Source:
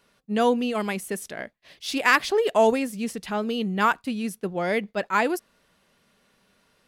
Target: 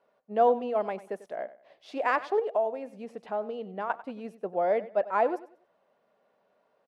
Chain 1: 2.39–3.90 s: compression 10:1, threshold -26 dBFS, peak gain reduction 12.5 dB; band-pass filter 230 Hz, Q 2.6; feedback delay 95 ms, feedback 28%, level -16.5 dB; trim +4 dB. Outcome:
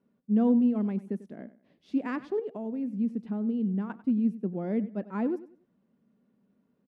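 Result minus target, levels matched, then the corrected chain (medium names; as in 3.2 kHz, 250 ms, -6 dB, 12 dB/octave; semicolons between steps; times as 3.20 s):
250 Hz band +14.0 dB
2.39–3.90 s: compression 10:1, threshold -26 dBFS, peak gain reduction 12.5 dB; band-pass filter 650 Hz, Q 2.6; feedback delay 95 ms, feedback 28%, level -16.5 dB; trim +4 dB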